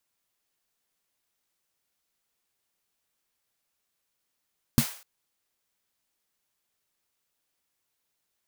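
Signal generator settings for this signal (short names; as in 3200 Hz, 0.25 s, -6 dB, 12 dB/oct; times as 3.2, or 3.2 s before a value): snare drum length 0.25 s, tones 140 Hz, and 230 Hz, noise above 540 Hz, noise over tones -11.5 dB, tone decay 0.09 s, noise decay 0.47 s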